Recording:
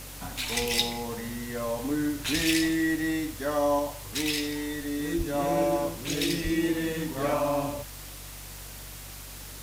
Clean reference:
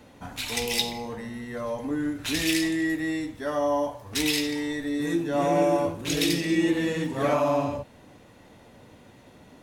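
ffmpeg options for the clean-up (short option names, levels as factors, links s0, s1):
-filter_complex "[0:a]bandreject=f=47.9:t=h:w=4,bandreject=f=95.8:t=h:w=4,bandreject=f=143.7:t=h:w=4,asplit=3[s0][s1][s2];[s0]afade=t=out:st=5.17:d=0.02[s3];[s1]highpass=f=140:w=0.5412,highpass=f=140:w=1.3066,afade=t=in:st=5.17:d=0.02,afade=t=out:st=5.29:d=0.02[s4];[s2]afade=t=in:st=5.29:d=0.02[s5];[s3][s4][s5]amix=inputs=3:normalize=0,asplit=3[s6][s7][s8];[s6]afade=t=out:st=6.43:d=0.02[s9];[s7]highpass=f=140:w=0.5412,highpass=f=140:w=1.3066,afade=t=in:st=6.43:d=0.02,afade=t=out:st=6.55:d=0.02[s10];[s8]afade=t=in:st=6.55:d=0.02[s11];[s9][s10][s11]amix=inputs=3:normalize=0,afwtdn=0.0071,asetnsamples=n=441:p=0,asendcmd='3.79 volume volume 3.5dB',volume=1"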